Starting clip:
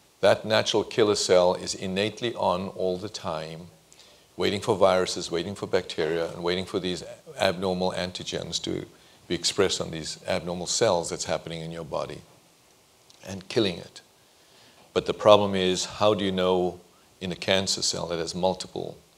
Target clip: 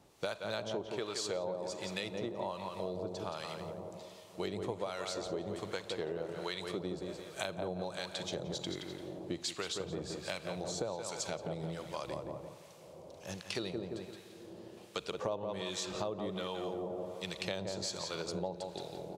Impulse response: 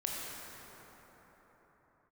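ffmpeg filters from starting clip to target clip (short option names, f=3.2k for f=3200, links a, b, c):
-filter_complex "[0:a]asplit=2[a][b];[b]adelay=172,lowpass=f=3k:p=1,volume=-6.5dB,asplit=2[c][d];[d]adelay=172,lowpass=f=3k:p=1,volume=0.44,asplit=2[e][f];[f]adelay=172,lowpass=f=3k:p=1,volume=0.44,asplit=2[g][h];[h]adelay=172,lowpass=f=3k:p=1,volume=0.44,asplit=2[i][j];[j]adelay=172,lowpass=f=3k:p=1,volume=0.44[k];[a][c][e][g][i][k]amix=inputs=6:normalize=0,asplit=2[l][m];[1:a]atrim=start_sample=2205,asetrate=23373,aresample=44100,lowpass=3.3k[n];[m][n]afir=irnorm=-1:irlink=0,volume=-23.5dB[o];[l][o]amix=inputs=2:normalize=0,acrossover=split=1100[p][q];[p]aeval=exprs='val(0)*(1-0.7/2+0.7/2*cos(2*PI*1.3*n/s))':c=same[r];[q]aeval=exprs='val(0)*(1-0.7/2-0.7/2*cos(2*PI*1.3*n/s))':c=same[s];[r][s]amix=inputs=2:normalize=0,acompressor=threshold=-33dB:ratio=6,volume=-2dB"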